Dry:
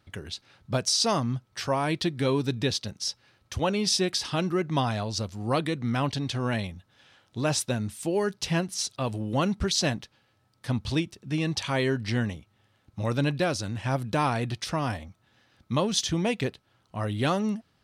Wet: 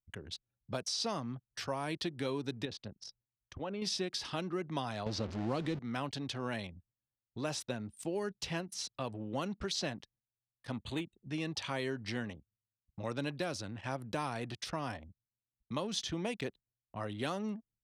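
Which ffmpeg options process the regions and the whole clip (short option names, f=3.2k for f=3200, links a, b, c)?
-filter_complex "[0:a]asettb=1/sr,asplit=3[a][b][c];[a]atrim=end=2.654[d];[b]atrim=start=2.65:end=3.82,asetpts=PTS-STARTPTS,afade=t=in:d=0.004:c=qsin,afade=t=out:st=1.166:d=0.004:c=qsin,acompressor=threshold=-27dB:ratio=5:attack=3.2:release=140:knee=1:detection=peak,aemphasis=mode=reproduction:type=75kf[e];[c]atrim=start=3.816[f];[d][e]acrossfade=d=0.004:c1=hsin:c2=qsin[g];[g][f]acrossfade=d=0.004:c1=qsin:c2=hsin,asettb=1/sr,asplit=3[h][i][j];[h]atrim=end=5.064[k];[i]atrim=start=5.06:end=5.79,asetpts=PTS-STARTPTS,afade=t=in:d=0.004:c=qsin,afade=t=out:st=0.726:d=0.004:c=qsin,aeval=exprs='val(0)+0.5*0.0299*sgn(val(0))':c=same,lowpass=4.8k,lowshelf=f=330:g=11.5[l];[j]atrim=start=5.786[m];[k][l]acrossfade=d=0.004:c1=hsin:c2=qsin[n];[n][m]acrossfade=d=0.004:c1=qsin:c2=hsin,asettb=1/sr,asplit=3[o][p][q];[o]atrim=end=10.724[r];[p]atrim=start=10.72:end=11.28,asetpts=PTS-STARTPTS,afade=t=in:d=0.004:c=qsin,afade=t=out:st=0.556:d=0.004:c=qsin,volume=21dB,asoftclip=hard,volume=-21dB,asuperstop=centerf=5300:order=4:qfactor=2[s];[q]atrim=start=11.276[t];[r][s]acrossfade=d=0.004:c1=hsin:c2=qsin[u];[u][t]acrossfade=d=0.004:c1=qsin:c2=hsin,agate=range=-9dB:threshold=-56dB:ratio=16:detection=peak,anlmdn=0.398,acrossover=split=220|5000[v][w][x];[v]acompressor=threshold=-40dB:ratio=4[y];[w]acompressor=threshold=-27dB:ratio=4[z];[x]acompressor=threshold=-40dB:ratio=4[aa];[y][z][aa]amix=inputs=3:normalize=0,volume=-6.5dB"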